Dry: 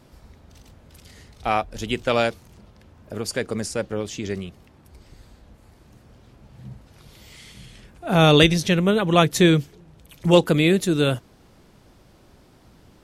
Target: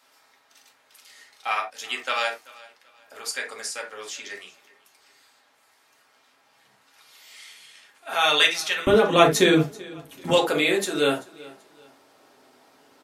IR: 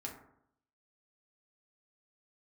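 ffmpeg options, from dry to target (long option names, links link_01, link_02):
-filter_complex "[0:a]asetnsamples=nb_out_samples=441:pad=0,asendcmd='8.87 highpass f 240;10.3 highpass f 530',highpass=1200,aecho=1:1:385|770:0.0841|0.0269[link_01];[1:a]atrim=start_sample=2205,atrim=end_sample=3969[link_02];[link_01][link_02]afir=irnorm=-1:irlink=0,volume=4.5dB"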